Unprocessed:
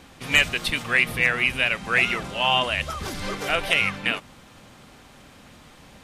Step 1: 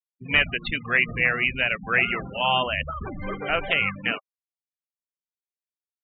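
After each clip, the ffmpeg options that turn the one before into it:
-filter_complex "[0:a]acrossover=split=3400[a][b];[b]acompressor=threshold=-44dB:ratio=4:attack=1:release=60[c];[a][c]amix=inputs=2:normalize=0,afftfilt=real='re*gte(hypot(re,im),0.0447)':imag='im*gte(hypot(re,im),0.0447)':win_size=1024:overlap=0.75,afftdn=nr=25:nf=-39"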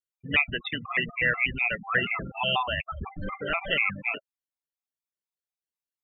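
-af "afftfilt=real='re*gt(sin(2*PI*4.1*pts/sr)*(1-2*mod(floor(b*sr/1024/670),2)),0)':imag='im*gt(sin(2*PI*4.1*pts/sr)*(1-2*mod(floor(b*sr/1024/670),2)),0)':win_size=1024:overlap=0.75"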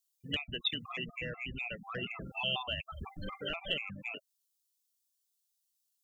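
-filter_complex "[0:a]acrossover=split=680[a][b];[b]acompressor=threshold=-34dB:ratio=10[c];[a][c]amix=inputs=2:normalize=0,aexciter=amount=9.9:drive=3.6:freq=3k,volume=-7.5dB"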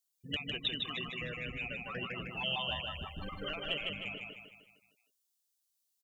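-af "aecho=1:1:154|308|462|616|770|924:0.668|0.314|0.148|0.0694|0.0326|0.0153,volume=-2dB"

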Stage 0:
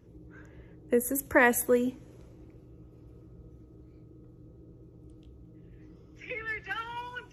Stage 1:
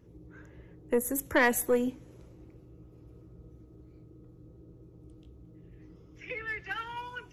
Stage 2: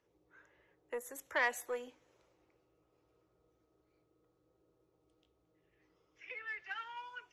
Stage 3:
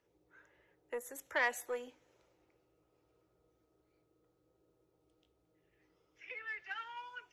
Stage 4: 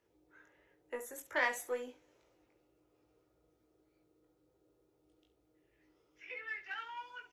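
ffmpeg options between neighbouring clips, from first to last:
-af "aeval=exprs='(tanh(5.62*val(0)+0.3)-tanh(0.3))/5.62':c=same"
-filter_complex "[0:a]acrossover=split=530 7500:gain=0.0708 1 0.2[a][b][c];[a][b][c]amix=inputs=3:normalize=0,volume=-6.5dB"
-af "bandreject=f=1.1k:w=13"
-filter_complex "[0:a]equalizer=f=310:t=o:w=0.41:g=3,asplit=2[a][b];[b]aecho=0:1:20|68:0.631|0.237[c];[a][c]amix=inputs=2:normalize=0,volume=-1dB"

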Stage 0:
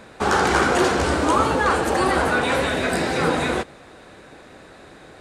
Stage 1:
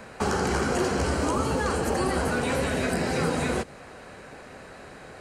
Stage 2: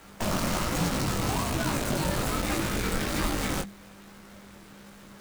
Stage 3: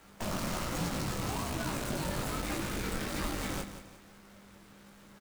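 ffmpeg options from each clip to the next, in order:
-filter_complex "[0:a]equalizer=f=320:t=o:w=0.26:g=-7.5,bandreject=f=3.6k:w=6.2,acrossover=split=440|3700[a][b][c];[a]acompressor=threshold=-25dB:ratio=4[d];[b]acompressor=threshold=-32dB:ratio=4[e];[c]acompressor=threshold=-38dB:ratio=4[f];[d][e][f]amix=inputs=3:normalize=0,volume=1dB"
-af "acrusher=bits=5:dc=4:mix=0:aa=0.000001,flanger=delay=16:depth=7.3:speed=1.2,afreqshift=-200"
-af "aecho=1:1:176|352|528|704:0.282|0.104|0.0386|0.0143,volume=-7dB"

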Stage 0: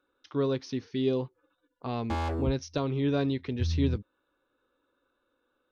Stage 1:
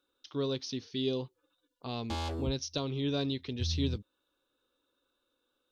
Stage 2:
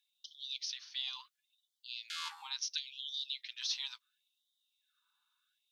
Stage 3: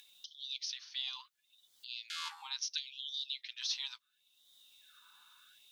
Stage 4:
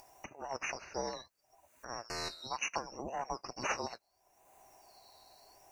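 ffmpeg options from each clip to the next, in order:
-af "highshelf=f=2.6k:t=q:w=1.5:g=8.5,volume=-5dB"
-af "afftfilt=real='re*gte(b*sr/1024,760*pow(3000/760,0.5+0.5*sin(2*PI*0.72*pts/sr)))':imag='im*gte(b*sr/1024,760*pow(3000/760,0.5+0.5*sin(2*PI*0.72*pts/sr)))':win_size=1024:overlap=0.75,volume=1.5dB"
-af "acompressor=mode=upward:threshold=-46dB:ratio=2.5"
-af "afftfilt=real='real(if(lt(b,272),68*(eq(floor(b/68),0)*2+eq(floor(b/68),1)*3+eq(floor(b/68),2)*0+eq(floor(b/68),3)*1)+mod(b,68),b),0)':imag='imag(if(lt(b,272),68*(eq(floor(b/68),0)*2+eq(floor(b/68),1)*3+eq(floor(b/68),2)*0+eq(floor(b/68),3)*1)+mod(b,68),b),0)':win_size=2048:overlap=0.75,volume=2dB"

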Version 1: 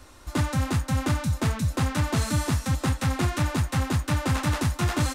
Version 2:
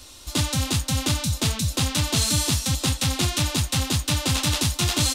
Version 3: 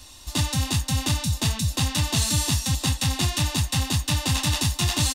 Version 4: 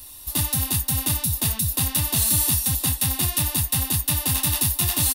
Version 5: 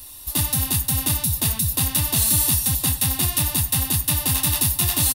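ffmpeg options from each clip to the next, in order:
-af "highshelf=f=2.4k:t=q:w=1.5:g=10.5"
-af "aecho=1:1:1.1:0.41,volume=-2dB"
-af "aexciter=amount=4.5:drive=9.6:freq=9.7k,volume=-2.5dB"
-af "aecho=1:1:102:0.106,volume=1.5dB"

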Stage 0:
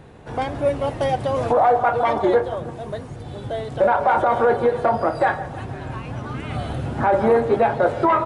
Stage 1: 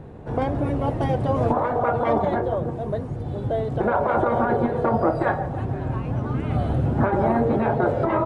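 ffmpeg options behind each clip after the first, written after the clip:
-af "afftfilt=real='re*lt(hypot(re,im),0.794)':imag='im*lt(hypot(re,im),0.794)':win_size=1024:overlap=0.75,tiltshelf=f=1.3k:g=8,volume=-2.5dB"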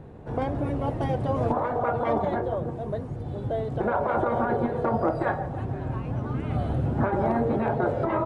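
-af "asoftclip=type=hard:threshold=-9.5dB,volume=-4dB"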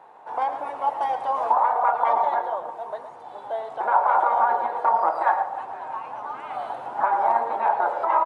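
-af "highpass=f=890:t=q:w=4.3,aecho=1:1:111:0.282"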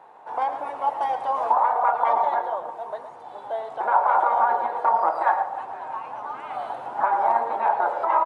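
-af anull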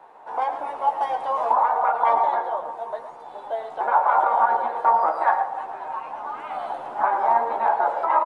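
-filter_complex "[0:a]acrossover=split=170|1000[a][b][c];[a]aeval=exprs='max(val(0),0)':c=same[d];[d][b][c]amix=inputs=3:normalize=0,asplit=2[e][f];[f]adelay=13,volume=-5.5dB[g];[e][g]amix=inputs=2:normalize=0"

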